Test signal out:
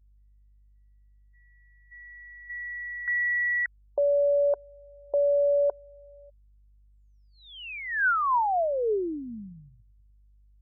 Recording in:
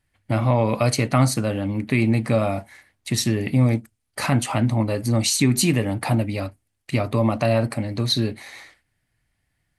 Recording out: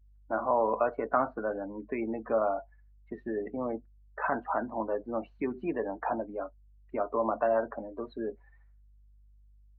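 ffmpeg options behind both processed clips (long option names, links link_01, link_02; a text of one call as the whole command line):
ffmpeg -i in.wav -af "highpass=frequency=260:width=0.5412,highpass=frequency=260:width=1.3066,equalizer=frequency=270:width_type=q:width=4:gain=-5,equalizer=frequency=430:width_type=q:width=4:gain=6,equalizer=frequency=690:width_type=q:width=4:gain=5,equalizer=frequency=980:width_type=q:width=4:gain=7,equalizer=frequency=1500:width_type=q:width=4:gain=9,equalizer=frequency=2100:width_type=q:width=4:gain=-6,lowpass=frequency=2200:width=0.5412,lowpass=frequency=2200:width=1.3066,aeval=exprs='val(0)+0.00708*(sin(2*PI*50*n/s)+sin(2*PI*2*50*n/s)/2+sin(2*PI*3*50*n/s)/3+sin(2*PI*4*50*n/s)/4+sin(2*PI*5*50*n/s)/5)':channel_layout=same,afftdn=noise_reduction=27:noise_floor=-28,volume=-8.5dB" out.wav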